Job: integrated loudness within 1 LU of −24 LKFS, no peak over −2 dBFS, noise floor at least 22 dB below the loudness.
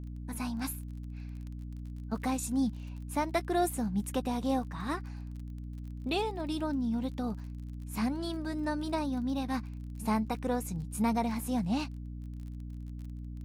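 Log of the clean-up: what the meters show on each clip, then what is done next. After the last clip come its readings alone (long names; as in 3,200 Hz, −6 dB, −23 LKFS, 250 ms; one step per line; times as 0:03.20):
crackle rate 31 per second; mains hum 60 Hz; hum harmonics up to 300 Hz; level of the hum −38 dBFS; integrated loudness −34.5 LKFS; sample peak −18.5 dBFS; target loudness −24.0 LKFS
→ click removal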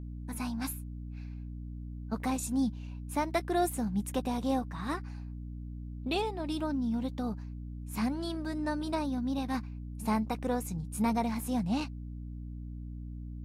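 crackle rate 0.074 per second; mains hum 60 Hz; hum harmonics up to 300 Hz; level of the hum −38 dBFS
→ mains-hum notches 60/120/180/240/300 Hz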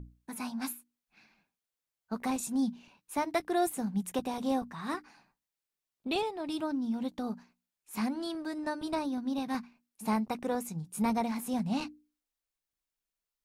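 mains hum none found; integrated loudness −34.0 LKFS; sample peak −18.5 dBFS; target loudness −24.0 LKFS
→ level +10 dB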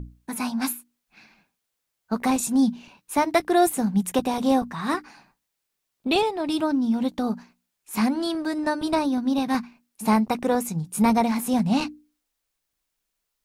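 integrated loudness −24.0 LKFS; sample peak −8.5 dBFS; background noise floor −80 dBFS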